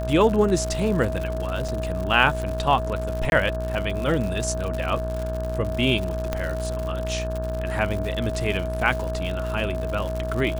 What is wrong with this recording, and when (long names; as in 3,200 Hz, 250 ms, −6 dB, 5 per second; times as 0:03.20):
mains buzz 60 Hz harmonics 29 −29 dBFS
surface crackle 130 per second −28 dBFS
whistle 640 Hz −29 dBFS
0:01.68–0:01.69: drop-out 5 ms
0:03.30–0:03.32: drop-out 21 ms
0:06.33: click −11 dBFS